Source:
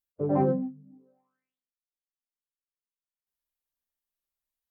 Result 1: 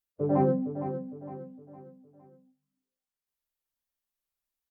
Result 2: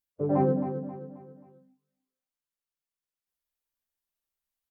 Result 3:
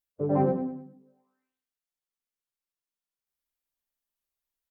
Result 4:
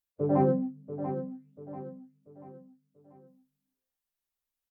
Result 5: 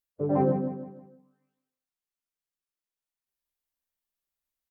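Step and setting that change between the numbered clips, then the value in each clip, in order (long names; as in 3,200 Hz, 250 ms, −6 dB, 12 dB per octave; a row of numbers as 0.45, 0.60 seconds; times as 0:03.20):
repeating echo, delay time: 460, 267, 101, 688, 159 milliseconds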